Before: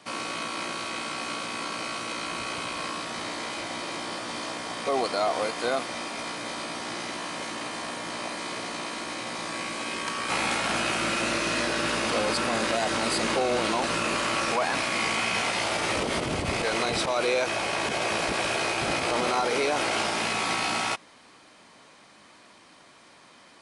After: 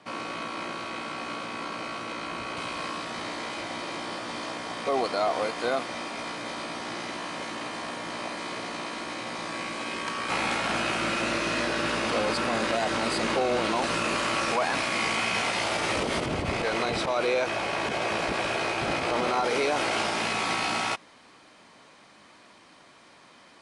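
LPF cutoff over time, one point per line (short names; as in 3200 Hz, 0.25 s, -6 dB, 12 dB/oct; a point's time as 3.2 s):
LPF 6 dB/oct
2300 Hz
from 2.57 s 4500 Hz
from 13.76 s 8300 Hz
from 16.26 s 3400 Hz
from 19.44 s 6700 Hz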